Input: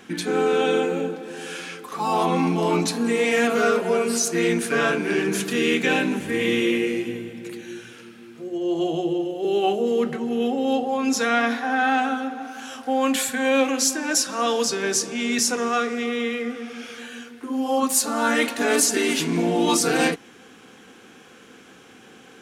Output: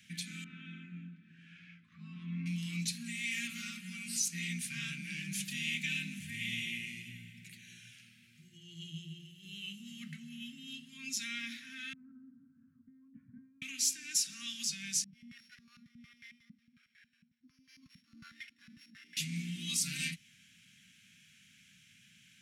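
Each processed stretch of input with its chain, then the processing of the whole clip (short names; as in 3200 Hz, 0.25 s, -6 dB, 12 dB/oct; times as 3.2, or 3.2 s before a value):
0.44–2.46 LPF 1300 Hz + notch 930 Hz, Q 8.7
11.93–13.62 Bessel low-pass 530 Hz, order 6 + negative-ratio compressor -29 dBFS
15.04–19.17 sample sorter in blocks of 8 samples + stepped band-pass 11 Hz 200–1700 Hz
whole clip: elliptic band-stop 170–2100 Hz, stop band 60 dB; dynamic EQ 1600 Hz, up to -6 dB, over -47 dBFS, Q 2.4; HPF 63 Hz; gain -8.5 dB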